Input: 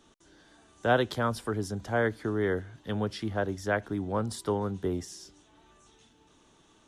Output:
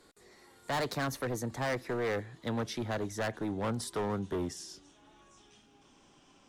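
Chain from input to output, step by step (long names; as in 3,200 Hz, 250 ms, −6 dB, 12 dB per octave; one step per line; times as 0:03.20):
gliding playback speed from 124% → 88%
parametric band 64 Hz −7.5 dB 1.1 octaves
gain into a clipping stage and back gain 29 dB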